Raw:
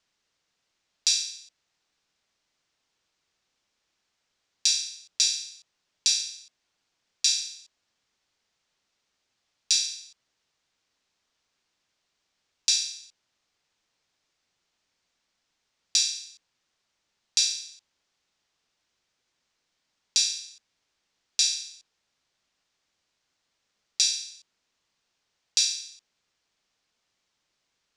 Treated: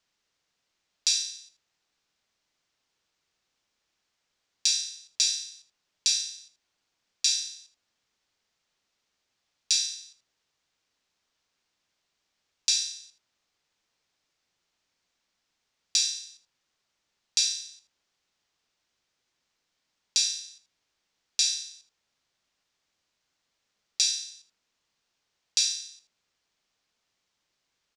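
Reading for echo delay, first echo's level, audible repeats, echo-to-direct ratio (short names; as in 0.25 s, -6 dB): 79 ms, -14.0 dB, 1, -14.0 dB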